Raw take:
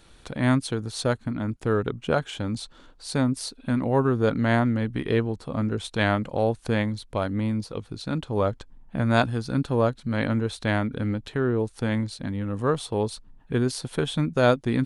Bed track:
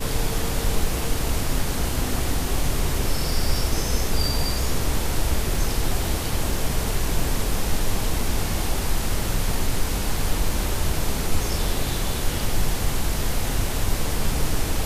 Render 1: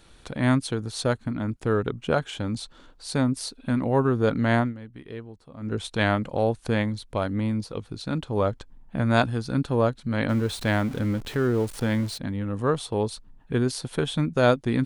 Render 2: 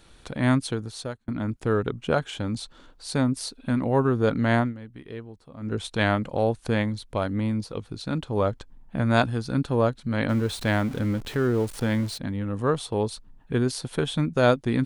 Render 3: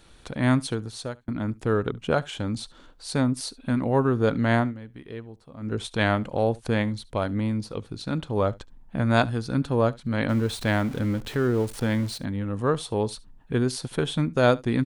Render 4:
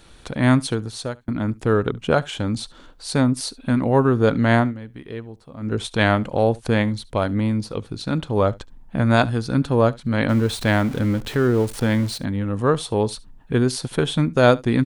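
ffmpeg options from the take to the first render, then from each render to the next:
-filter_complex "[0:a]asettb=1/sr,asplit=3[a][b][c];[a]atrim=end=10.294[d];[b]atrim=start=10.29:end=12.18,asetpts=PTS-STARTPTS,afade=t=in:d=0.004:c=qsin,afade=t=out:st=1.886:d=0.004:c=qsin,aeval=exprs='val(0)+0.5*0.0168*sgn(val(0))':c=same[e];[c]atrim=start=12.176[f];[d][e]acrossfade=d=0.004:c1=hsin:c2=qsin[g];[g][f]acrossfade=d=0.004:c1=qsin:c2=hsin,asplit=3[h][i][j];[h]atrim=end=4.74,asetpts=PTS-STARTPTS,afade=t=out:st=4.6:d=0.14:silence=0.188365[k];[i]atrim=start=4.74:end=5.6,asetpts=PTS-STARTPTS,volume=-14.5dB[l];[j]atrim=start=5.6,asetpts=PTS-STARTPTS,afade=t=in:d=0.14:silence=0.188365[m];[k][l][m]concat=n=3:v=0:a=1"
-filter_complex "[0:a]asplit=2[a][b];[a]atrim=end=1.28,asetpts=PTS-STARTPTS,afade=t=out:st=0.71:d=0.57[c];[b]atrim=start=1.28,asetpts=PTS-STARTPTS,afade=t=in:d=0.004:c=hsin[d];[c][d]concat=n=2:v=0:a=1"
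-af "aecho=1:1:71:0.0708"
-af "volume=5dB,alimiter=limit=-2dB:level=0:latency=1"

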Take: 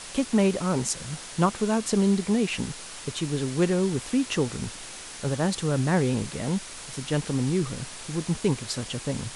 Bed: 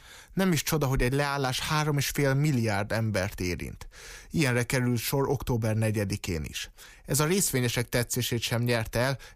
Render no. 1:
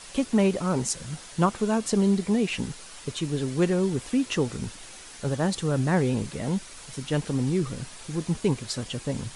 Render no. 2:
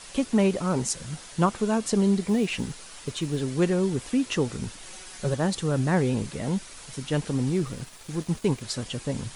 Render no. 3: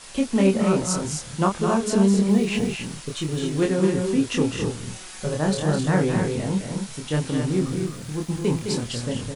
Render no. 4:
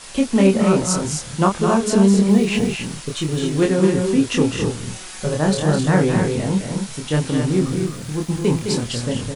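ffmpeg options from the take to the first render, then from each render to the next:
-af "afftdn=nr=6:nf=-41"
-filter_complex "[0:a]asettb=1/sr,asplit=3[a][b][c];[a]atrim=end=2.234[d];[b]atrim=start=2.23:end=3.41,asetpts=PTS-STARTPTS,afade=t=in:d=0.004:c=qsin,afade=t=out:st=1.176:d=0.004:c=qsin,acrusher=bits=9:mode=log:mix=0:aa=0.000001[e];[c]atrim=start=3.406[f];[d][e]acrossfade=d=0.004:c1=hsin:c2=qsin[g];[g][f]acrossfade=d=0.004:c1=qsin:c2=hsin,asettb=1/sr,asplit=3[h][i][j];[h]atrim=end=4.854[k];[i]atrim=start=4.85:end=5.34,asetpts=PTS-STARTPTS,afade=t=in:d=0.004:c=qsin,afade=t=out:st=0.486:d=0.004:c=qsin,aecho=1:1:5.4:0.65,atrim=end_sample=21609[l];[j]atrim=start=5.336[m];[k][l]acrossfade=d=0.004:c1=hsin:c2=qsin[n];[n][m]acrossfade=d=0.004:c1=qsin:c2=hsin,asettb=1/sr,asplit=3[o][p][q];[o]atrim=end=7.484[r];[p]atrim=start=7.48:end=8.63,asetpts=PTS-STARTPTS,afade=t=in:d=0.004:c=qsin,afade=t=out:st=1.146:d=0.004:c=qsin,aeval=exprs='sgn(val(0))*max(abs(val(0))-0.00376,0)':c=same[s];[q]atrim=start=8.626[t];[r][s]acrossfade=d=0.004:c1=hsin:c2=qsin[u];[u][t]acrossfade=d=0.004:c1=qsin:c2=hsin"
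-filter_complex "[0:a]asplit=2[a][b];[b]adelay=26,volume=-3dB[c];[a][c]amix=inputs=2:normalize=0,aecho=1:1:209.9|259.5:0.447|0.501"
-af "volume=4.5dB,alimiter=limit=-3dB:level=0:latency=1"

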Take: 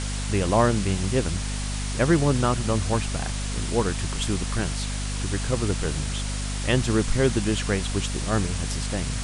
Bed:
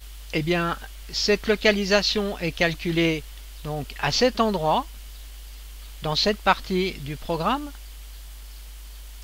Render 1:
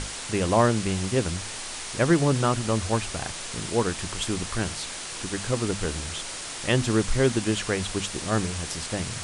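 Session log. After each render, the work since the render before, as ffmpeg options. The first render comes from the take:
-af "bandreject=f=50:t=h:w=6,bandreject=f=100:t=h:w=6,bandreject=f=150:t=h:w=6,bandreject=f=200:t=h:w=6,bandreject=f=250:t=h:w=6"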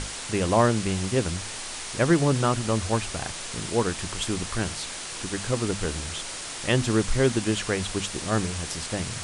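-af anull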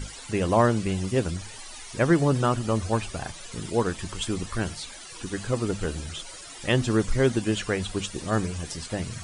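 -af "afftdn=nr=15:nf=-36"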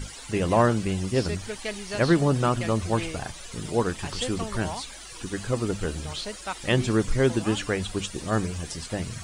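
-filter_complex "[1:a]volume=-14dB[a];[0:a][a]amix=inputs=2:normalize=0"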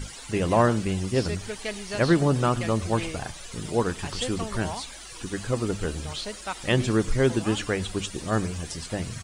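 -filter_complex "[0:a]asplit=2[a][b];[b]adelay=105,volume=-22dB,highshelf=f=4k:g=-2.36[c];[a][c]amix=inputs=2:normalize=0"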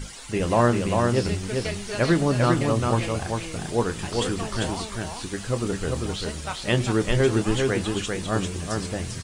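-filter_complex "[0:a]asplit=2[a][b];[b]adelay=25,volume=-11.5dB[c];[a][c]amix=inputs=2:normalize=0,aecho=1:1:396:0.668"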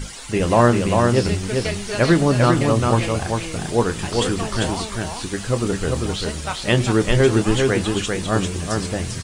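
-af "volume=5dB,alimiter=limit=-3dB:level=0:latency=1"

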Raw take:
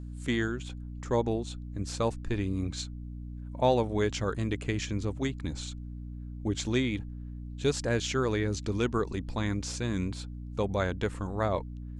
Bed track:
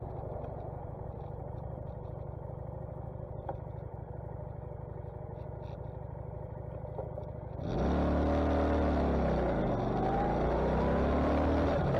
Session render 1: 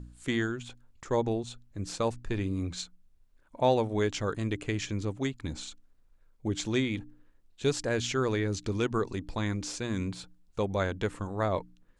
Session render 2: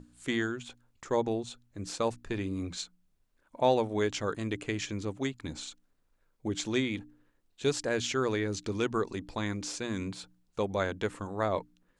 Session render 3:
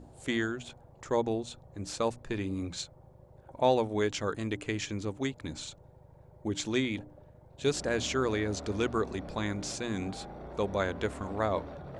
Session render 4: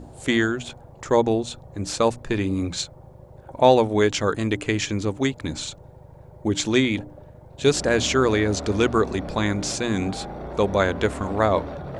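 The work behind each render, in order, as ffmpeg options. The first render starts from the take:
-af "bandreject=f=60:t=h:w=4,bandreject=f=120:t=h:w=4,bandreject=f=180:t=h:w=4,bandreject=f=240:t=h:w=4,bandreject=f=300:t=h:w=4"
-af "lowshelf=f=92:g=-11.5,bandreject=f=60:t=h:w=6,bandreject=f=120:t=h:w=6,bandreject=f=180:t=h:w=6"
-filter_complex "[1:a]volume=-14dB[a];[0:a][a]amix=inputs=2:normalize=0"
-af "volume=10dB"

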